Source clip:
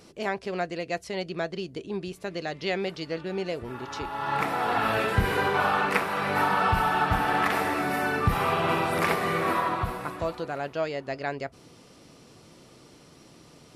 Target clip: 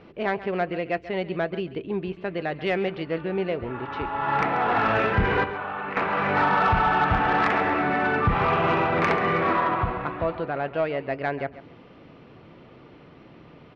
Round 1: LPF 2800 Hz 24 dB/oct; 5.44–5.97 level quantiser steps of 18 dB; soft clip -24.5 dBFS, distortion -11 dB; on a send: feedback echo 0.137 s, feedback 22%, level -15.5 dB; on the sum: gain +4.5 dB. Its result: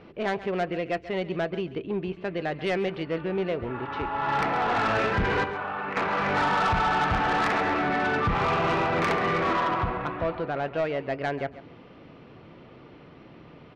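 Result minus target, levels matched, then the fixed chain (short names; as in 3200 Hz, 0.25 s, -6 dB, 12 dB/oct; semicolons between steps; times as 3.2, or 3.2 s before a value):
soft clip: distortion +7 dB
LPF 2800 Hz 24 dB/oct; 5.44–5.97 level quantiser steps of 18 dB; soft clip -17.5 dBFS, distortion -18 dB; on a send: feedback echo 0.137 s, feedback 22%, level -15.5 dB; on the sum: gain +4.5 dB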